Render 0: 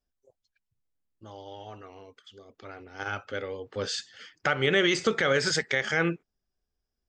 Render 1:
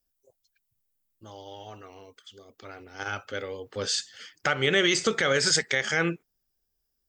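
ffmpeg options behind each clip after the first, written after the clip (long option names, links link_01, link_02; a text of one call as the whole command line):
ffmpeg -i in.wav -af "aemphasis=mode=production:type=50fm" out.wav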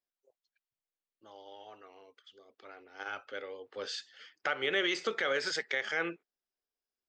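ffmpeg -i in.wav -filter_complex "[0:a]acrossover=split=280 4700:gain=0.1 1 0.1[link_01][link_02][link_03];[link_01][link_02][link_03]amix=inputs=3:normalize=0,volume=-6.5dB" out.wav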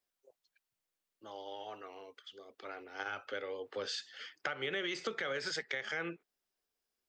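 ffmpeg -i in.wav -filter_complex "[0:a]acrossover=split=160[link_01][link_02];[link_02]acompressor=threshold=-42dB:ratio=4[link_03];[link_01][link_03]amix=inputs=2:normalize=0,volume=5.5dB" out.wav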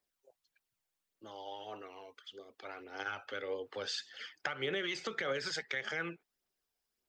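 ffmpeg -i in.wav -af "aphaser=in_gain=1:out_gain=1:delay=1.4:decay=0.39:speed=1.7:type=triangular" out.wav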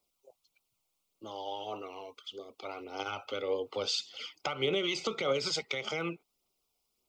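ffmpeg -i in.wav -af "asuperstop=centerf=1700:order=4:qfactor=2,volume=6.5dB" out.wav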